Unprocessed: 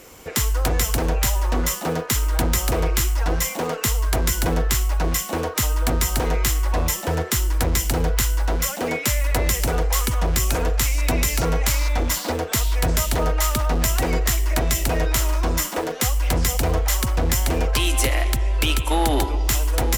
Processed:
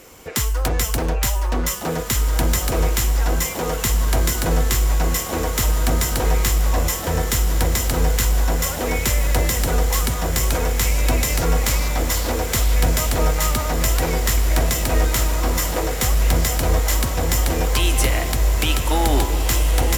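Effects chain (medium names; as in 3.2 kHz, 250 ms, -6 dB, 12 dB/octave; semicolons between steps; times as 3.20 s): echo that smears into a reverb 1842 ms, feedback 65%, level -7 dB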